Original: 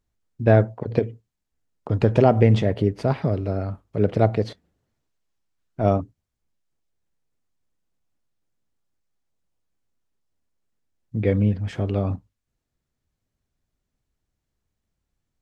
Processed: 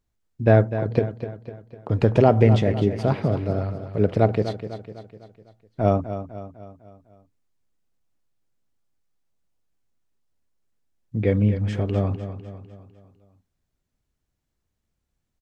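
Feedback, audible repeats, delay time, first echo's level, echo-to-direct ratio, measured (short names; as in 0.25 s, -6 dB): 50%, 4, 0.251 s, -11.0 dB, -9.5 dB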